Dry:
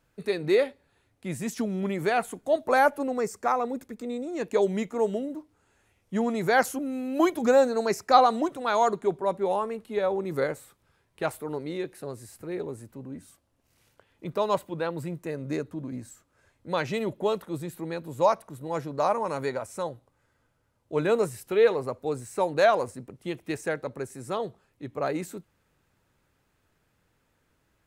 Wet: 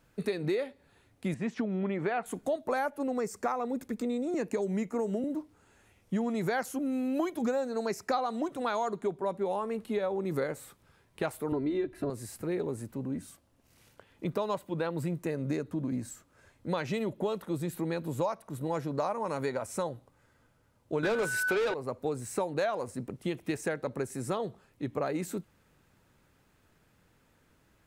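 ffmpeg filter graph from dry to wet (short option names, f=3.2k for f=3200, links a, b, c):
-filter_complex "[0:a]asettb=1/sr,asplit=3[a][b][c];[a]atrim=end=1.344[d];[b]atrim=start=1.34:end=2.26,asetpts=PTS-STARTPTS,afade=t=in:d=0.004:c=qsin,afade=t=out:st=0.916:d=0.004:c=qsin,lowpass=2.5k,lowshelf=f=180:g=-9[e];[c]atrim=start=2.256[f];[d][e]acrossfade=d=0.004:c1=hsin:c2=qsin[g];[g][f]acrossfade=d=0.004:c1=qsin:c2=hsin,asettb=1/sr,asplit=3[h][i][j];[h]atrim=end=4.344[k];[i]atrim=start=4.34:end=5.24,asetpts=PTS-STARTPTS,afade=t=in:d=0.004:c=qsin,afade=t=out:st=0.896:d=0.004:c=qsin,equalizer=f=3.4k:t=o:w=0.38:g=-11,acrossover=split=310|3000[l][m][n];[m]acompressor=threshold=-26dB:ratio=6:attack=3.2:release=140:knee=2.83:detection=peak[o];[l][o][n]amix=inputs=3:normalize=0[p];[j]atrim=start=5.236[q];[k][p]acrossfade=d=0.004:c1=hsin:c2=qsin[r];[r][q]acrossfade=d=0.004:c1=qsin:c2=hsin,asettb=1/sr,asplit=3[s][t][u];[s]atrim=end=11.524[v];[t]atrim=start=11.52:end=12.1,asetpts=PTS-STARTPTS,afade=t=in:d=0.004:c=qsin,afade=t=out:st=0.576:d=0.004:c=qsin,bass=f=250:g=11,treble=f=4k:g=-12,aecho=1:1:3:0.92,atrim=end_sample=25578[w];[u]atrim=start=12.096[x];[v][w]acrossfade=d=0.004:c1=hsin:c2=qsin[y];[y][x]acrossfade=d=0.004:c1=qsin:c2=hsin,asettb=1/sr,asplit=3[z][aa][ab];[z]atrim=end=21.034[ac];[aa]atrim=start=21.03:end=21.74,asetpts=PTS-STARTPTS,afade=t=in:d=0.004:c=qsin,afade=t=out:st=0.706:d=0.004:c=qsin,aeval=exprs='val(0)+0.0126*sin(2*PI*1500*n/s)':c=same,asplit=2[ad][ae];[ae]highpass=f=720:p=1,volume=23dB,asoftclip=type=tanh:threshold=-10dB[af];[ad][af]amix=inputs=2:normalize=0,lowpass=f=6.2k:p=1,volume=-6dB[ag];[ab]atrim=start=21.736[ah];[ac][ag]acrossfade=d=0.004:c1=hsin:c2=qsin[ai];[ai][ah]acrossfade=d=0.004:c1=qsin:c2=hsin,equalizer=f=210:t=o:w=1:g=3,acompressor=threshold=-32dB:ratio=6,volume=3.5dB"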